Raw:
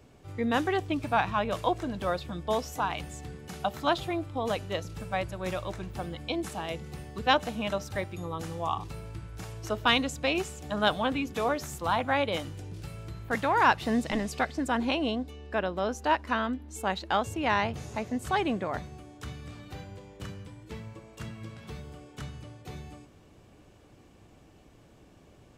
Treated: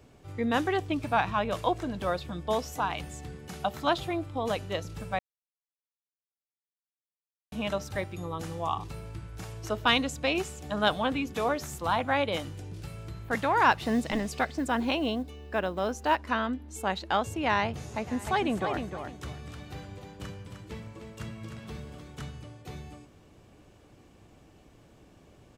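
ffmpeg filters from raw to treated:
ffmpeg -i in.wav -filter_complex "[0:a]asettb=1/sr,asplit=3[link_01][link_02][link_03];[link_01]atrim=end=13.714[link_04];[link_02]atrim=start=13.71:end=16.19,asetpts=PTS-STARTPTS,afade=type=in:duration=0.004:curve=qsin,afade=type=out:start_time=2.476:duration=0.004:curve=qsin,acrusher=bits=9:mode=log:mix=0:aa=0.000001[link_05];[link_03]atrim=start=16.186[link_06];[link_04][link_05]acrossfade=duration=0.004:curve1=hsin:curve2=qsin[link_07];[link_07][link_06]acrossfade=duration=0.004:curve1=qsin:curve2=hsin,asplit=3[link_08][link_09][link_10];[link_08]afade=type=out:start_time=18.06:duration=0.02[link_11];[link_09]aecho=1:1:305|610|915:0.447|0.103|0.0236,afade=type=in:start_time=18.06:duration=0.02,afade=type=out:start_time=22.32:duration=0.02[link_12];[link_10]afade=type=in:start_time=22.32:duration=0.02[link_13];[link_11][link_12][link_13]amix=inputs=3:normalize=0,asplit=3[link_14][link_15][link_16];[link_14]atrim=end=5.19,asetpts=PTS-STARTPTS,afade=type=out:start_time=5.186:duration=0.004:curve=hsin[link_17];[link_15]atrim=start=5.19:end=7.52,asetpts=PTS-STARTPTS,volume=0[link_18];[link_16]atrim=start=7.52,asetpts=PTS-STARTPTS,afade=type=in:duration=0.004:curve=hsin[link_19];[link_17][link_18][link_19]concat=n=3:v=0:a=1" out.wav

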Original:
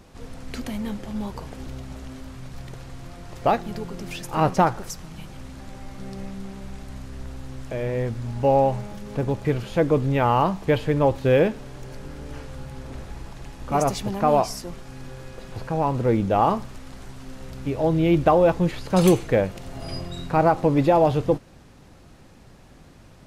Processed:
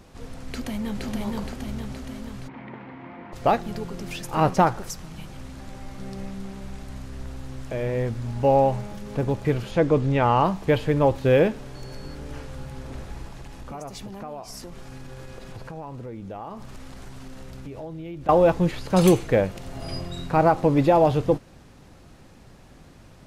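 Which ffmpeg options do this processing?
ffmpeg -i in.wav -filter_complex "[0:a]asplit=2[link_01][link_02];[link_02]afade=type=in:start_time=0.47:duration=0.01,afade=type=out:start_time=1.03:duration=0.01,aecho=0:1:470|940|1410|1880|2350|2820|3290|3760|4230:0.841395|0.504837|0.302902|0.181741|0.109045|0.0654269|0.0392561|0.0235537|0.0141322[link_03];[link_01][link_03]amix=inputs=2:normalize=0,asplit=3[link_04][link_05][link_06];[link_04]afade=type=out:start_time=2.47:duration=0.02[link_07];[link_05]highpass=190,equalizer=frequency=300:width_type=q:width=4:gain=8,equalizer=frequency=930:width_type=q:width=4:gain=9,equalizer=frequency=2100:width_type=q:width=4:gain=7,lowpass=frequency=2600:width=0.5412,lowpass=frequency=2600:width=1.3066,afade=type=in:start_time=2.47:duration=0.02,afade=type=out:start_time=3.32:duration=0.02[link_08];[link_06]afade=type=in:start_time=3.32:duration=0.02[link_09];[link_07][link_08][link_09]amix=inputs=3:normalize=0,asettb=1/sr,asplit=3[link_10][link_11][link_12];[link_10]atrim=end=9.714[link_13];[link_11]atrim=start=9.71:end=10.44,asetpts=PTS-STARTPTS,afade=type=in:duration=0.004:curve=qsin,afade=type=out:start_time=0.726:duration=0.004:curve=qsin,lowpass=8200[link_14];[link_12]atrim=start=10.436[link_15];[link_13][link_14]acrossfade=duration=0.004:curve1=hsin:curve2=qsin[link_16];[link_16][link_15]acrossfade=duration=0.004:curve1=qsin:curve2=hsin,asettb=1/sr,asplit=3[link_17][link_18][link_19];[link_17]atrim=end=11.754[link_20];[link_18]atrim=start=11.75:end=12.15,asetpts=PTS-STARTPTS,afade=type=in:duration=0.004:curve=qsin,afade=type=out:start_time=0.396:duration=0.004:curve=qsin,aeval=exprs='val(0)+0.00316*sin(2*PI*4400*n/s)':channel_layout=same[link_21];[link_19]atrim=start=12.146[link_22];[link_20][link_21]acrossfade=duration=0.004:curve1=hsin:curve2=qsin[link_23];[link_23][link_22]acrossfade=duration=0.004:curve1=qsin:curve2=hsin,asettb=1/sr,asplit=3[link_24][link_25][link_26];[link_24]atrim=end=13.254[link_27];[link_25]atrim=start=13.25:end=18.29,asetpts=PTS-STARTPTS,afade=type=in:duration=0.004:curve=qsin,afade=type=out:start_time=5.036:duration=0.004:curve=qsin,acompressor=threshold=-34dB:ratio=6:attack=3.2:release=140:knee=1:detection=peak[link_28];[link_26]atrim=start=18.286[link_29];[link_27][link_28]acrossfade=duration=0.004:curve1=hsin:curve2=qsin[link_30];[link_30][link_29]acrossfade=duration=0.004:curve1=qsin:curve2=hsin" out.wav

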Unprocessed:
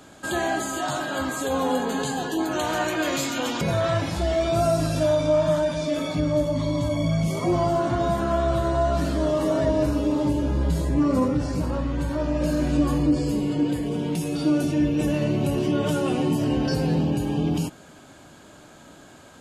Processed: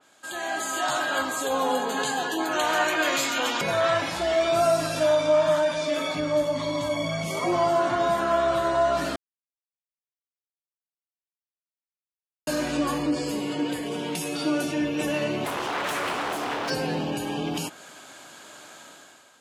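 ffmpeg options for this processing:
ffmpeg -i in.wav -filter_complex "[0:a]asettb=1/sr,asplit=3[link_01][link_02][link_03];[link_01]atrim=end=1.224[link_04];[link_02]atrim=start=1.22:end=1.97,asetpts=PTS-STARTPTS,afade=type=in:duration=0.004:curve=qsin,afade=type=out:start_time=0.746:duration=0.004:curve=qsin,equalizer=frequency=1900:width=1.2:gain=-5.5[link_05];[link_03]atrim=start=1.966[link_06];[link_04][link_05]acrossfade=duration=0.004:curve1=hsin:curve2=qsin[link_07];[link_07][link_06]acrossfade=duration=0.004:curve1=qsin:curve2=hsin,asplit=3[link_08][link_09][link_10];[link_08]afade=type=out:start_time=15.44:duration=0.02[link_11];[link_09]aeval=exprs='0.0631*(abs(mod(val(0)/0.0631+3,4)-2)-1)':channel_layout=same,afade=type=in:start_time=15.44:duration=0.02,afade=type=out:start_time=16.69:duration=0.02[link_12];[link_10]afade=type=in:start_time=16.69:duration=0.02[link_13];[link_11][link_12][link_13]amix=inputs=3:normalize=0,asplit=3[link_14][link_15][link_16];[link_14]atrim=end=9.16,asetpts=PTS-STARTPTS,afade=type=out:start_time=9.156:duration=0.004:curve=hsin[link_17];[link_15]atrim=start=9.16:end=12.47,asetpts=PTS-STARTPTS,volume=0[link_18];[link_16]atrim=start=12.47,asetpts=PTS-STARTPTS,afade=type=in:duration=0.004:curve=hsin[link_19];[link_17][link_18][link_19]concat=n=3:v=0:a=1,highpass=frequency=1200:poles=1,dynaudnorm=framelen=130:gausssize=9:maxgain=13dB,adynamicequalizer=threshold=0.02:dfrequency=3200:dqfactor=0.7:tfrequency=3200:tqfactor=0.7:attack=5:release=100:ratio=0.375:range=3:mode=cutabove:tftype=highshelf,volume=-5.5dB" out.wav

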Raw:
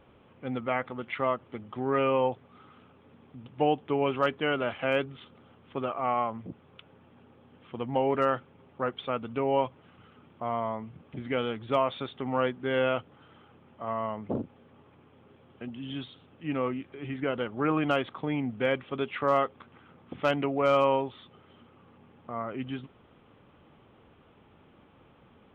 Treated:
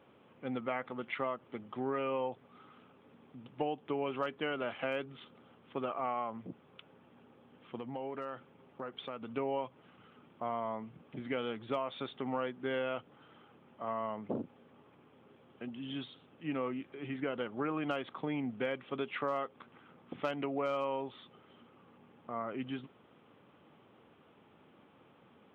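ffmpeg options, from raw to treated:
ffmpeg -i in.wav -filter_complex "[0:a]asettb=1/sr,asplit=3[link_01][link_02][link_03];[link_01]atrim=end=7.774[link_04];[link_02]atrim=start=7.77:end=9.34,asetpts=PTS-STARTPTS,afade=type=in:duration=0.004:curve=qsin,afade=type=out:start_time=1.566:duration=0.004:curve=qsin,acompressor=threshold=-34dB:ratio=5:attack=3.2:release=140:knee=1:detection=peak[link_05];[link_03]atrim=start=9.336[link_06];[link_04][link_05]acrossfade=duration=0.004:curve1=hsin:curve2=qsin[link_07];[link_07][link_06]acrossfade=duration=0.004:curve1=qsin:curve2=hsin,highpass=150,acompressor=threshold=-28dB:ratio=6,volume=-3dB" out.wav

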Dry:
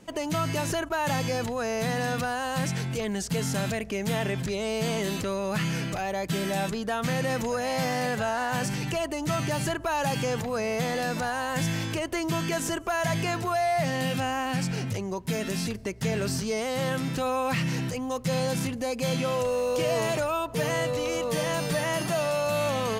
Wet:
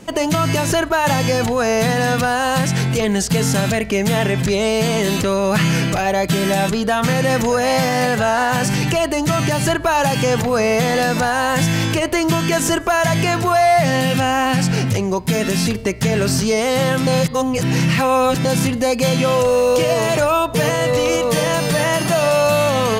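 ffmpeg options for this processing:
ffmpeg -i in.wav -filter_complex "[0:a]asplit=3[link_01][link_02][link_03];[link_01]atrim=end=17.072[link_04];[link_02]atrim=start=17.068:end=18.452,asetpts=PTS-STARTPTS,areverse[link_05];[link_03]atrim=start=18.448[link_06];[link_04][link_05]acrossfade=duration=0.004:curve1=hsin:curve2=hsin[link_07];[link_07][link_06]acrossfade=duration=0.004:curve1=hsin:curve2=hsin,bandreject=frequency=152.1:width_type=h:width=4,bandreject=frequency=304.2:width_type=h:width=4,bandreject=frequency=456.3:width_type=h:width=4,bandreject=frequency=608.4:width_type=h:width=4,bandreject=frequency=760.5:width_type=h:width=4,bandreject=frequency=912.6:width_type=h:width=4,bandreject=frequency=1064.7:width_type=h:width=4,bandreject=frequency=1216.8:width_type=h:width=4,bandreject=frequency=1368.9:width_type=h:width=4,bandreject=frequency=1521:width_type=h:width=4,bandreject=frequency=1673.1:width_type=h:width=4,bandreject=frequency=1825.2:width_type=h:width=4,bandreject=frequency=1977.3:width_type=h:width=4,bandreject=frequency=2129.4:width_type=h:width=4,bandreject=frequency=2281.5:width_type=h:width=4,bandreject=frequency=2433.6:width_type=h:width=4,bandreject=frequency=2585.7:width_type=h:width=4,bandreject=frequency=2737.8:width_type=h:width=4,bandreject=frequency=2889.9:width_type=h:width=4,bandreject=frequency=3042:width_type=h:width=4,bandreject=frequency=3194.1:width_type=h:width=4,bandreject=frequency=3346.2:width_type=h:width=4,bandreject=frequency=3498.3:width_type=h:width=4,bandreject=frequency=3650.4:width_type=h:width=4,bandreject=frequency=3802.5:width_type=h:width=4,bandreject=frequency=3954.6:width_type=h:width=4,bandreject=frequency=4106.7:width_type=h:width=4,bandreject=frequency=4258.8:width_type=h:width=4,bandreject=frequency=4410.9:width_type=h:width=4,bandreject=frequency=4563:width_type=h:width=4,bandreject=frequency=4715.1:width_type=h:width=4,bandreject=frequency=4867.2:width_type=h:width=4,bandreject=frequency=5019.3:width_type=h:width=4,acontrast=41,alimiter=limit=-14dB:level=0:latency=1:release=201,volume=7dB" out.wav

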